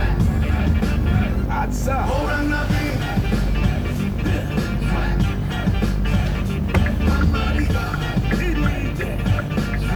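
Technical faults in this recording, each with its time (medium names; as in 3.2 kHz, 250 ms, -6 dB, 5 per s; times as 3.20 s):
buzz 50 Hz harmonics 36 -24 dBFS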